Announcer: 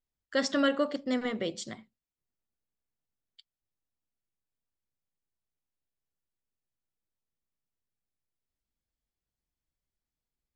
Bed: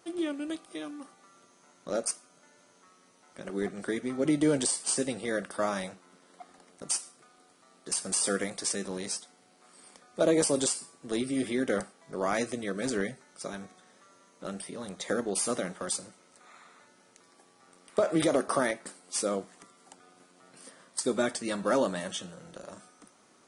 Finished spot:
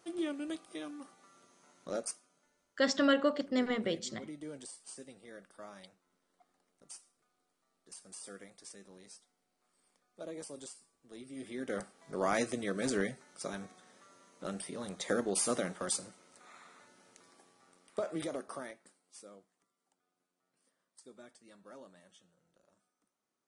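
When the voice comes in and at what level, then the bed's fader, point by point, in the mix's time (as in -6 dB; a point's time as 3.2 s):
2.45 s, -1.0 dB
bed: 1.84 s -4 dB
2.79 s -20 dB
11.13 s -20 dB
12.07 s -2 dB
17.28 s -2 dB
19.54 s -26.5 dB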